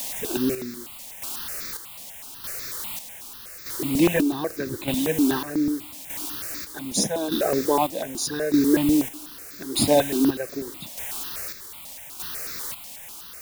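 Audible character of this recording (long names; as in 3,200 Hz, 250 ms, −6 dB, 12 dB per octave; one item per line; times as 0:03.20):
a quantiser's noise floor 6 bits, dither triangular
chopped level 0.82 Hz, depth 60%, duty 45%
notches that jump at a steady rate 8.1 Hz 380–3,000 Hz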